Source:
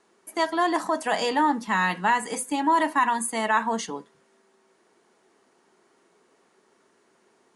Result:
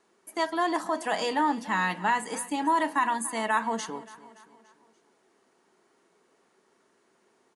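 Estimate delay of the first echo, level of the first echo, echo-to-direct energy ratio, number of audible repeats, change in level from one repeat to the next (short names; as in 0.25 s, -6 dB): 0.287 s, -18.0 dB, -17.0 dB, 3, -6.0 dB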